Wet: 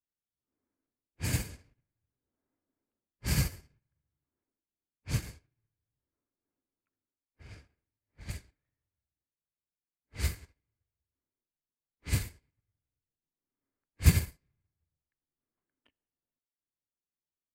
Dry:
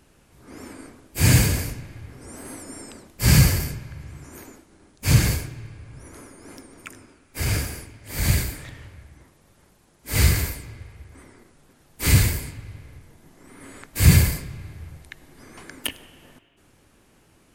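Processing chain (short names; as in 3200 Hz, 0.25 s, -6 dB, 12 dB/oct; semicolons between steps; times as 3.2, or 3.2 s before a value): low-pass opened by the level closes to 1500 Hz, open at -13 dBFS; dynamic EQ 130 Hz, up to -4 dB, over -29 dBFS, Q 2.4; upward expander 2.5:1, over -38 dBFS; gain -5 dB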